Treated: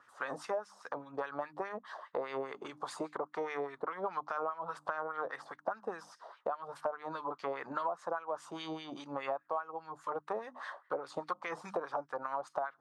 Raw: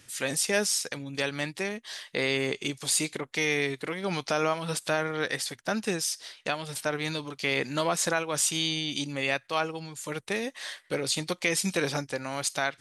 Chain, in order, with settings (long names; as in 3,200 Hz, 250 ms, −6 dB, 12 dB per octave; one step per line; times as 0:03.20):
high shelf with overshoot 1,600 Hz −12 dB, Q 3
mains-hum notches 50/100/150/200/250/300 Hz
auto-filter band-pass sine 4.9 Hz 620–2,200 Hz
downward compressor 8 to 1, threshold −41 dBFS, peak gain reduction 18 dB
level +8 dB